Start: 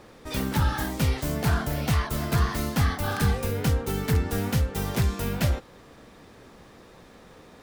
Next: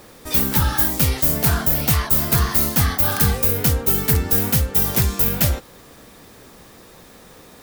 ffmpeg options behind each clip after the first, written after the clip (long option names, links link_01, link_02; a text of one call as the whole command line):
ffmpeg -i in.wav -af "aemphasis=mode=production:type=50fm,volume=4dB" out.wav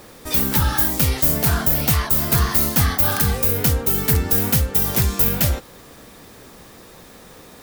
ffmpeg -i in.wav -af "alimiter=limit=-6dB:level=0:latency=1:release=202,volume=1.5dB" out.wav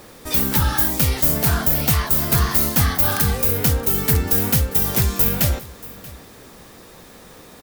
ffmpeg -i in.wav -af "aecho=1:1:633:0.1" out.wav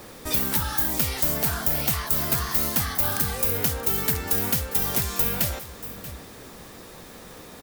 ffmpeg -i in.wav -filter_complex "[0:a]acrossover=split=490|5700[link_01][link_02][link_03];[link_01]acompressor=threshold=-31dB:ratio=4[link_04];[link_02]acompressor=threshold=-31dB:ratio=4[link_05];[link_03]acompressor=threshold=-21dB:ratio=4[link_06];[link_04][link_05][link_06]amix=inputs=3:normalize=0" out.wav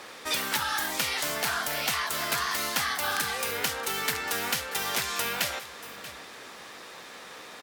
ffmpeg -i in.wav -af "bandpass=frequency=2200:width_type=q:width=0.57:csg=0,volume=5dB" out.wav